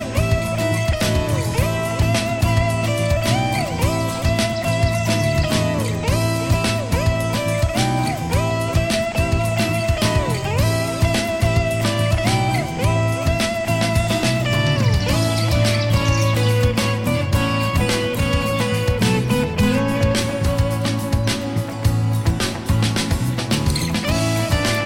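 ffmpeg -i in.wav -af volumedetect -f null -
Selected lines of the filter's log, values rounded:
mean_volume: -18.5 dB
max_volume: -5.0 dB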